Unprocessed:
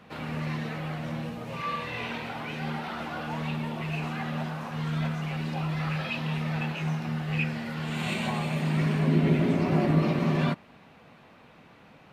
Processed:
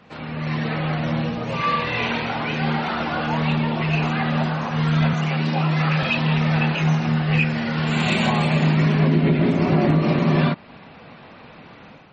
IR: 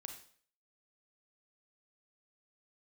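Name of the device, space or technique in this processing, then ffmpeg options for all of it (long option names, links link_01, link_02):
low-bitrate web radio: -filter_complex "[0:a]asettb=1/sr,asplit=3[link_01][link_02][link_03];[link_01]atrim=end=5.134[link_04];[link_02]atrim=start=5.13:end=6.03,asetpts=PTS-STARTPTS,afade=type=in:duration=0.004:curve=qsin,afade=type=out:start_time=0.896:duration=0.004:curve=qsin,highpass=frequency=130:width=0.5412,highpass=frequency=130:width=1.3066[link_05];[link_03]atrim=start=6.026[link_06];[link_04][link_05]acrossfade=duration=0.004:curve1=hsin:curve2=qsin[link_07];[link_07][link_06]acrossfade=duration=0.004:curve1=qsin:curve2=hsin,dynaudnorm=framelen=360:gausssize=3:maxgain=8.5dB,alimiter=limit=-11dB:level=0:latency=1:release=247,volume=2.5dB" -ar 48000 -c:a libmp3lame -b:a 32k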